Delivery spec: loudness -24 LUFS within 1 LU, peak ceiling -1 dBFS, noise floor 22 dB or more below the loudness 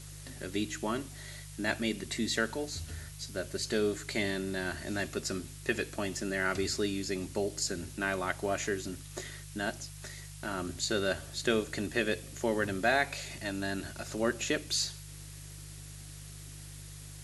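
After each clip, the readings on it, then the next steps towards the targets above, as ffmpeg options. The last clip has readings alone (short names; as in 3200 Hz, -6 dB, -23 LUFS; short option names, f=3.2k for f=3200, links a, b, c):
hum 50 Hz; harmonics up to 150 Hz; hum level -45 dBFS; noise floor -47 dBFS; noise floor target -56 dBFS; loudness -33.5 LUFS; peak -14.0 dBFS; loudness target -24.0 LUFS
-> -af "bandreject=f=50:t=h:w=4,bandreject=f=100:t=h:w=4,bandreject=f=150:t=h:w=4"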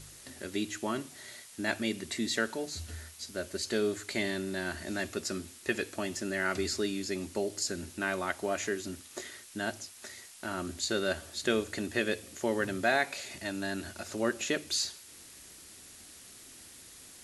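hum none; noise floor -52 dBFS; noise floor target -56 dBFS
-> -af "afftdn=nr=6:nf=-52"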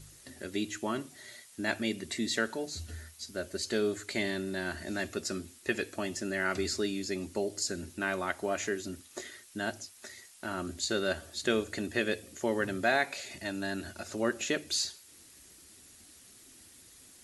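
noise floor -56 dBFS; loudness -33.5 LUFS; peak -14.5 dBFS; loudness target -24.0 LUFS
-> -af "volume=9.5dB"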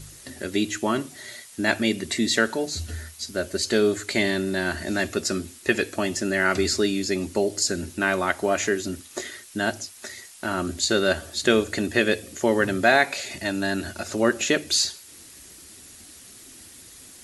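loudness -24.0 LUFS; peak -5.0 dBFS; noise floor -47 dBFS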